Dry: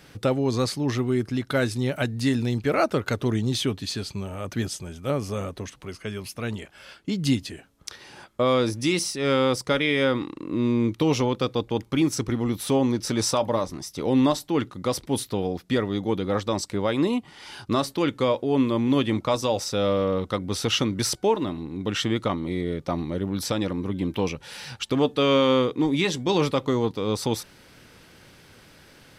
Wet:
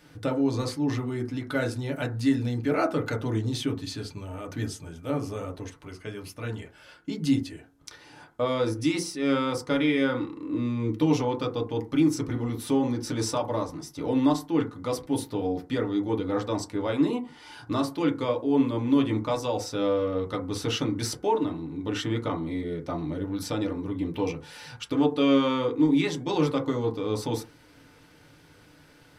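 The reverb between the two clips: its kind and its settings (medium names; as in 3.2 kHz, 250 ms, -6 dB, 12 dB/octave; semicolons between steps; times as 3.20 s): FDN reverb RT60 0.31 s, low-frequency decay 1.05×, high-frequency decay 0.3×, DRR 0.5 dB; trim -7 dB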